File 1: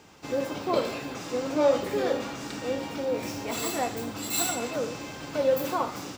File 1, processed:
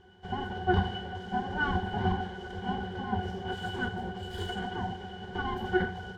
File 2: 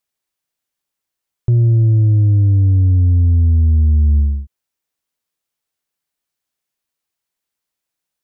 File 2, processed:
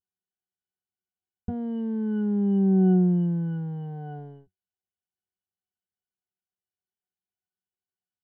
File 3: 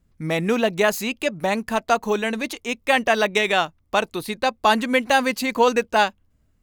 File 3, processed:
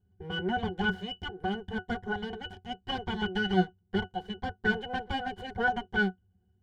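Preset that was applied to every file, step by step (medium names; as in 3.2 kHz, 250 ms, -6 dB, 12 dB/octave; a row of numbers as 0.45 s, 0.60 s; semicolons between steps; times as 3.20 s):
full-wave rectifier; pitch-class resonator F#, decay 0.11 s; peak normalisation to -12 dBFS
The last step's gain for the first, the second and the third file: +14.0 dB, +1.5 dB, +6.0 dB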